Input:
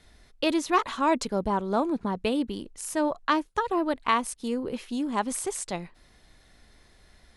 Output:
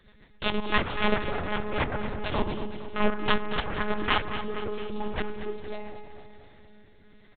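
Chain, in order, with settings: 1.74–2.19 minimum comb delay 4.4 ms; FDN reverb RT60 1.3 s, low-frequency decay 1.2×, high-frequency decay 0.6×, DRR 4 dB; added harmonics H 7 -10 dB, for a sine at -9 dBFS; rotary speaker horn 7.5 Hz, later 0.65 Hz, at 3.84; monotone LPC vocoder at 8 kHz 210 Hz; feedback echo 0.231 s, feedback 56%, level -11 dB

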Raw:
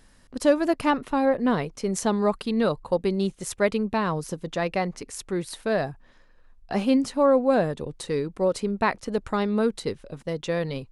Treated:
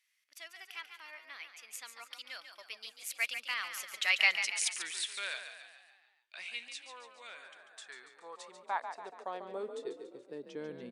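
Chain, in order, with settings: Doppler pass-by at 4.42, 40 m/s, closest 15 m; frequency-shifting echo 0.142 s, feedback 52%, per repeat +38 Hz, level -9 dB; high-pass sweep 2400 Hz -> 230 Hz, 7.22–10.85; gain +4.5 dB

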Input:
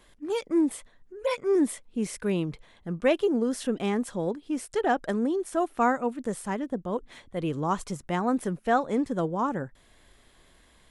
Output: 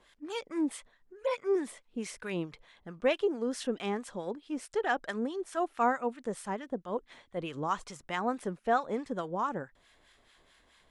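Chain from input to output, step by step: low shelf 440 Hz -10.5 dB; harmonic tremolo 4.6 Hz, depth 70%, crossover 1000 Hz; air absorption 54 m; gain +2.5 dB

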